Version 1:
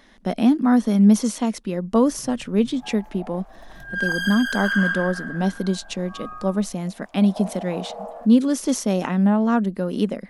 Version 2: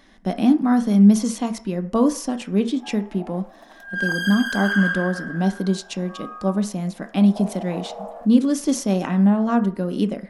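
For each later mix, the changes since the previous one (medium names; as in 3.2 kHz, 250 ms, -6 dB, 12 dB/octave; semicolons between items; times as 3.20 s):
speech: send on; first sound: muted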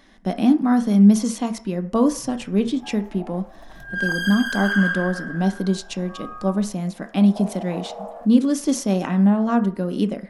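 first sound: unmuted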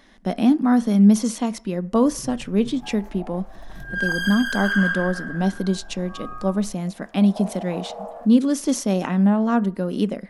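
speech: send -7.0 dB; first sound +6.5 dB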